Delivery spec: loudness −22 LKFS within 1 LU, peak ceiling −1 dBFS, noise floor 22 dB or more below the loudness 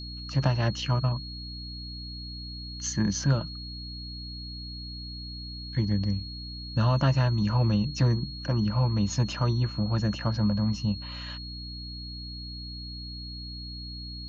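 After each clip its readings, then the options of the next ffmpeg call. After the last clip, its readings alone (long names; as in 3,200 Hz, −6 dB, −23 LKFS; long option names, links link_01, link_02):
mains hum 60 Hz; hum harmonics up to 300 Hz; level of the hum −36 dBFS; interfering tone 4,300 Hz; level of the tone −40 dBFS; integrated loudness −29.5 LKFS; sample peak −10.5 dBFS; target loudness −22.0 LKFS
→ -af "bandreject=frequency=60:width_type=h:width=4,bandreject=frequency=120:width_type=h:width=4,bandreject=frequency=180:width_type=h:width=4,bandreject=frequency=240:width_type=h:width=4,bandreject=frequency=300:width_type=h:width=4"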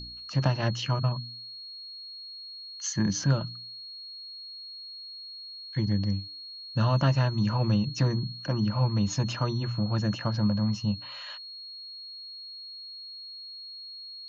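mains hum none found; interfering tone 4,300 Hz; level of the tone −40 dBFS
→ -af "bandreject=frequency=4300:width=30"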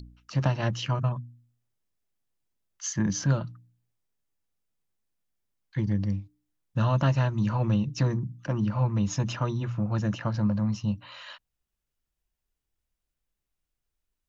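interfering tone none found; integrated loudness −28.0 LKFS; sample peak −11.0 dBFS; target loudness −22.0 LKFS
→ -af "volume=6dB"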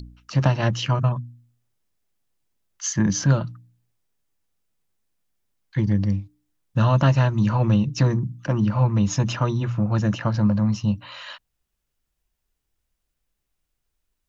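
integrated loudness −22.0 LKFS; sample peak −5.0 dBFS; background noise floor −79 dBFS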